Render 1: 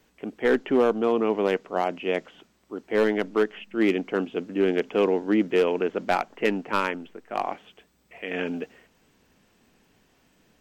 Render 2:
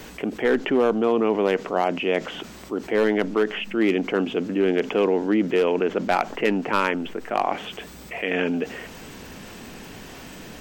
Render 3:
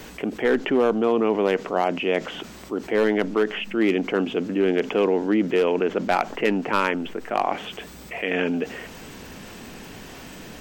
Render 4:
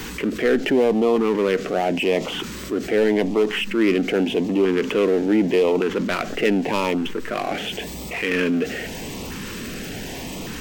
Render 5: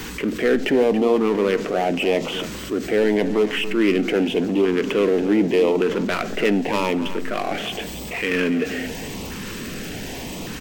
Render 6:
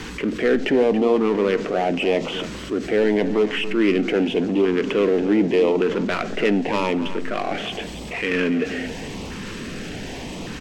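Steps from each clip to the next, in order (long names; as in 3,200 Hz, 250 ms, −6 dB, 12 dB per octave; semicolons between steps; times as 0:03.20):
envelope flattener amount 50%
no processing that can be heard
power curve on the samples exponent 0.7; auto-filter notch saw up 0.86 Hz 590–1,700 Hz
single-tap delay 280 ms −13 dB; on a send at −18.5 dB: convolution reverb RT60 0.85 s, pre-delay 19 ms
high-frequency loss of the air 58 metres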